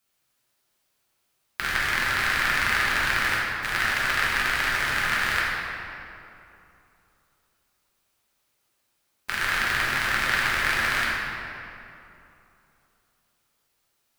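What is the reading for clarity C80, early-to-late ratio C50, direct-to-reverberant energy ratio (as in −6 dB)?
−0.5 dB, −2.5 dB, −6.5 dB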